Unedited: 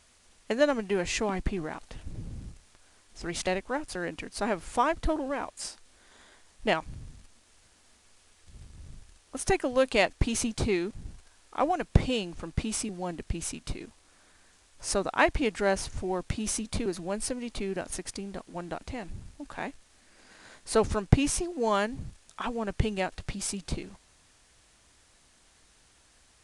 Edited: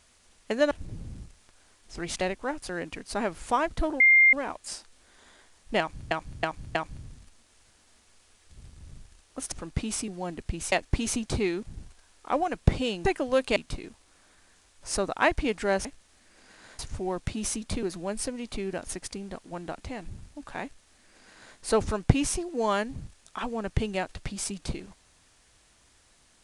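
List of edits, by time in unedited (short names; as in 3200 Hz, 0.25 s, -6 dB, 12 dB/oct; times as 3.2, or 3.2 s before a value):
0.71–1.97 cut
5.26 add tone 2110 Hz -14 dBFS 0.33 s
6.72–7.04 loop, 4 plays
9.49–10 swap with 12.33–13.53
19.66–20.6 copy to 15.82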